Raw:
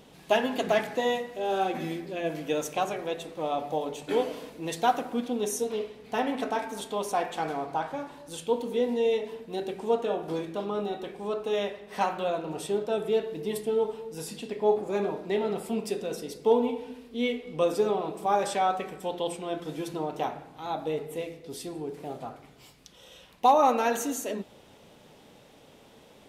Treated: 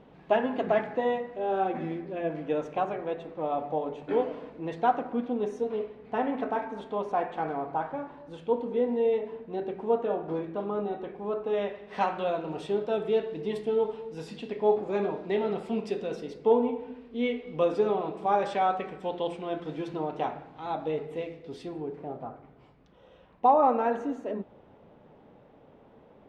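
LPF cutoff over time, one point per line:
11.48 s 1700 Hz
11.93 s 3400 Hz
16.16 s 3400 Hz
16.75 s 1700 Hz
17.39 s 2900 Hz
21.63 s 2900 Hz
22.15 s 1300 Hz

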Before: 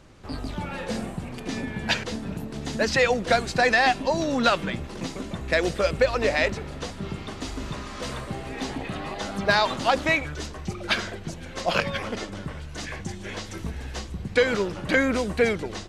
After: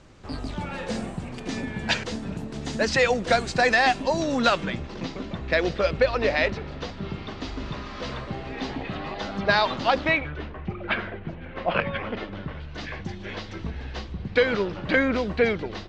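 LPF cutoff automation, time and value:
LPF 24 dB/oct
4.39 s 8900 Hz
5.08 s 5000 Hz
9.96 s 5000 Hz
10.46 s 2700 Hz
11.73 s 2700 Hz
12.86 s 4600 Hz

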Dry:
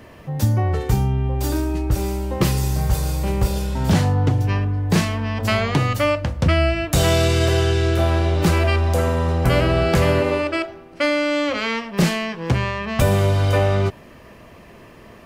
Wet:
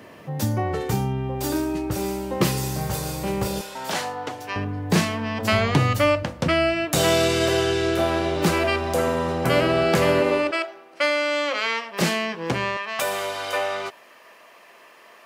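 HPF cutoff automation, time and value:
160 Hz
from 3.61 s 610 Hz
from 4.56 s 160 Hz
from 5.53 s 72 Hz
from 6.23 s 190 Hz
from 10.51 s 540 Hz
from 12.01 s 230 Hz
from 12.77 s 740 Hz

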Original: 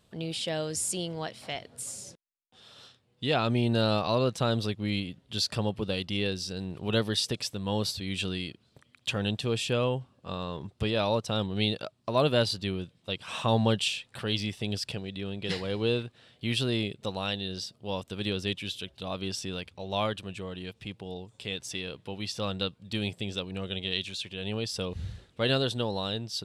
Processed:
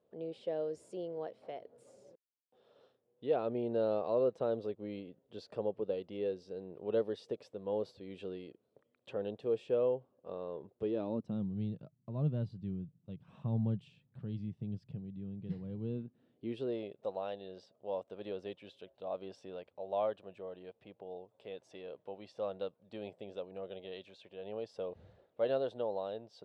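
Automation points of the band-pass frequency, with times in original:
band-pass, Q 2.6
10.74 s 480 Hz
11.53 s 150 Hz
15.8 s 150 Hz
16.84 s 590 Hz

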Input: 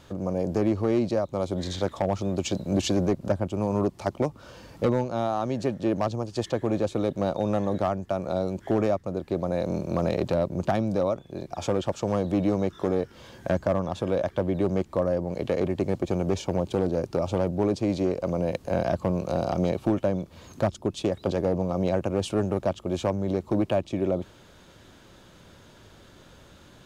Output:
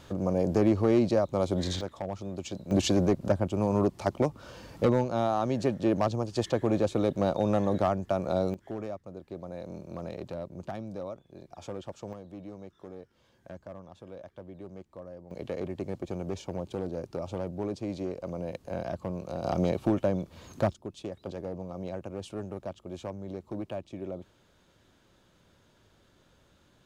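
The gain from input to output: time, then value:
+0.5 dB
from 1.81 s -9.5 dB
from 2.71 s -0.5 dB
from 8.54 s -13 dB
from 12.13 s -19.5 dB
from 15.31 s -9 dB
from 19.44 s -2 dB
from 20.73 s -12 dB

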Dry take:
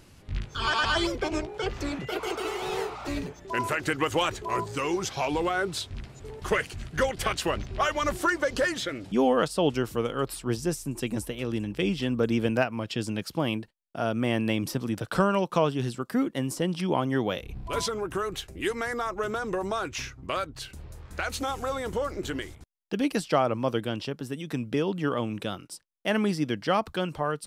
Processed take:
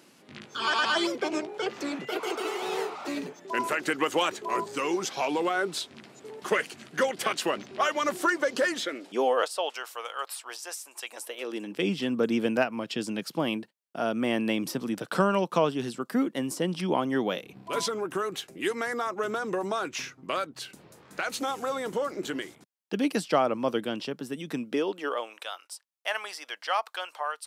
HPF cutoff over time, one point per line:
HPF 24 dB/oct
8.71 s 200 Hz
9.77 s 690 Hz
11.08 s 690 Hz
11.9 s 170 Hz
24.53 s 170 Hz
25.44 s 700 Hz

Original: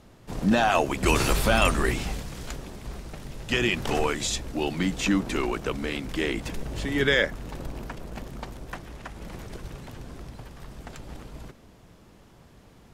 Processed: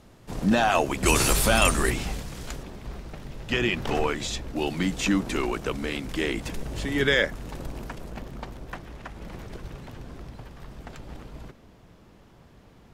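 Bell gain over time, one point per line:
bell 9700 Hz 1.6 oct
+1 dB
from 1.05 s +9 dB
from 1.9 s +0.5 dB
from 2.63 s -7.5 dB
from 4.56 s +1.5 dB
from 8.12 s -6 dB

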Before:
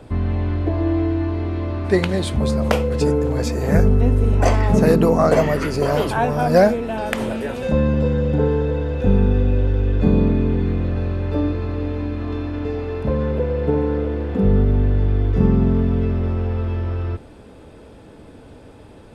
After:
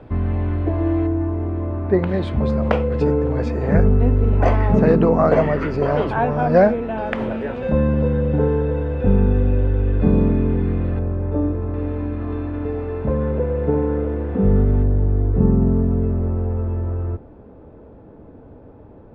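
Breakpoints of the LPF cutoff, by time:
2300 Hz
from 1.07 s 1200 Hz
from 2.07 s 2200 Hz
from 10.99 s 1100 Hz
from 11.74 s 1800 Hz
from 14.83 s 1000 Hz

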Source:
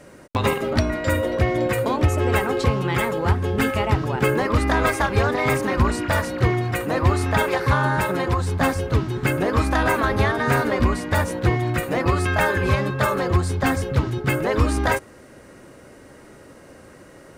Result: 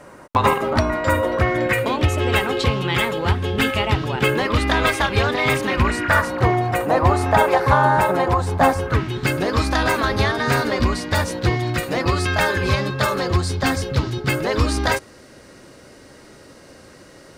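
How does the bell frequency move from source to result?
bell +10 dB 1.1 oct
1.27 s 1000 Hz
2.04 s 3300 Hz
5.67 s 3300 Hz
6.5 s 750 Hz
8.72 s 750 Hz
9.25 s 4600 Hz

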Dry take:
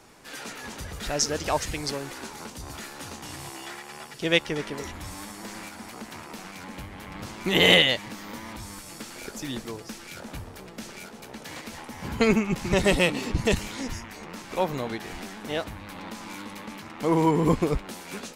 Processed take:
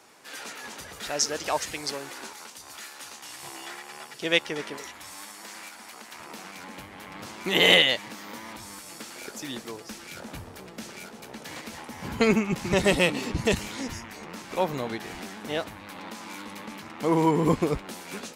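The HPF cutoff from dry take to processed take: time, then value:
HPF 6 dB/oct
450 Hz
from 2.33 s 1300 Hz
from 3.43 s 370 Hz
from 4.77 s 1000 Hz
from 6.2 s 290 Hz
from 9.91 s 93 Hz
from 15.66 s 230 Hz
from 16.48 s 110 Hz

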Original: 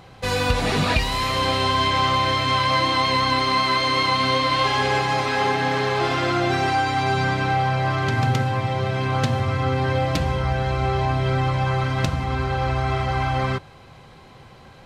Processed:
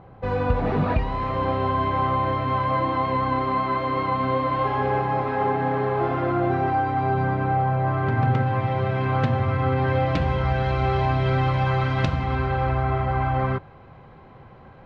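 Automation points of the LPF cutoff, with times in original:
7.79 s 1100 Hz
8.68 s 2100 Hz
9.71 s 2100 Hz
10.67 s 3500 Hz
12.12 s 3500 Hz
12.93 s 1600 Hz

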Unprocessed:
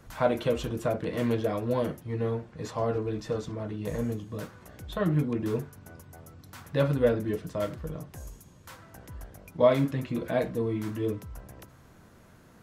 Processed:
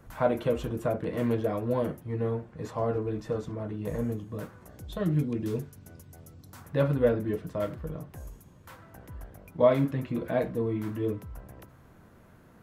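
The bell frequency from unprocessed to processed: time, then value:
bell -8 dB 2 oct
4.52 s 4800 Hz
5.05 s 1100 Hz
6.29 s 1100 Hz
6.8 s 6000 Hz

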